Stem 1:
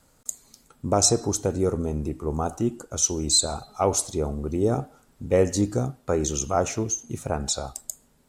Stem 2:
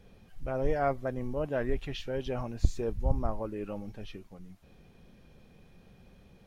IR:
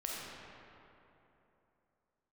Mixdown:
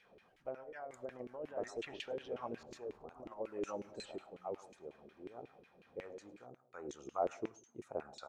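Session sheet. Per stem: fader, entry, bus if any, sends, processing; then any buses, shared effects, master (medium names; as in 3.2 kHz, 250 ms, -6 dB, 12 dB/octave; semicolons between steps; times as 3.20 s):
-8.0 dB, 0.65 s, no send, echo send -21.5 dB, auto duck -10 dB, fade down 2.00 s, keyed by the second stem
-2.0 dB, 0.00 s, send -13 dB, no echo send, treble shelf 3.8 kHz +8.5 dB; compressor with a negative ratio -36 dBFS, ratio -1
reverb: on, RT60 3.1 s, pre-delay 5 ms
echo: feedback delay 105 ms, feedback 26%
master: LFO band-pass saw down 5.5 Hz 330–2500 Hz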